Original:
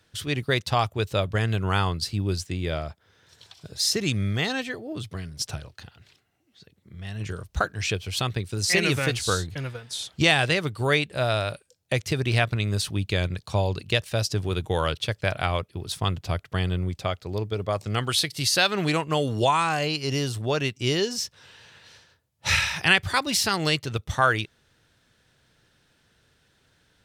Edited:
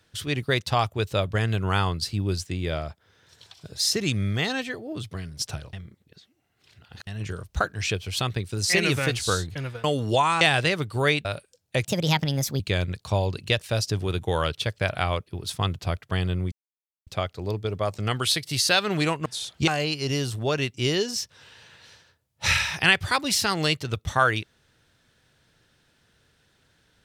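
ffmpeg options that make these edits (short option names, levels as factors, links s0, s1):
-filter_complex "[0:a]asplit=11[s0][s1][s2][s3][s4][s5][s6][s7][s8][s9][s10];[s0]atrim=end=5.732[s11];[s1]atrim=start=5.728:end=7.072,asetpts=PTS-STARTPTS,areverse[s12];[s2]atrim=start=7.068:end=9.842[s13];[s3]atrim=start=19.128:end=19.702[s14];[s4]atrim=start=10.258:end=11.102[s15];[s5]atrim=start=11.418:end=12.024[s16];[s6]atrim=start=12.02:end=13.02,asetpts=PTS-STARTPTS,asetrate=59094,aresample=44100,atrim=end_sample=32910,asetpts=PTS-STARTPTS[s17];[s7]atrim=start=13.016:end=16.94,asetpts=PTS-STARTPTS,afade=t=out:st=3.92:d=0.004:c=hsin,apad=pad_dur=0.55[s18];[s8]atrim=start=16.94:end=19.132,asetpts=PTS-STARTPTS,afade=t=in:d=0.004:c=hsin[s19];[s9]atrim=start=9.838:end=10.262[s20];[s10]atrim=start=19.698[s21];[s11][s12]acrossfade=d=0.004:c1=hsin:c2=hsin[s22];[s22][s13]acrossfade=d=0.004:c1=hsin:c2=hsin[s23];[s23][s14]acrossfade=d=0.004:c1=hsin:c2=hsin[s24];[s24][s15]acrossfade=d=0.004:c1=hsin:c2=hsin[s25];[s25][s16]acrossfade=d=0.004:c1=hsin:c2=hsin[s26];[s26][s17]acrossfade=d=0.004:c1=hsin:c2=hsin[s27];[s18][s19]concat=n=2:v=0:a=1[s28];[s27][s28]acrossfade=d=0.004:c1=hsin:c2=hsin[s29];[s29][s20]acrossfade=d=0.004:c1=hsin:c2=hsin[s30];[s30][s21]acrossfade=d=0.004:c1=hsin:c2=hsin"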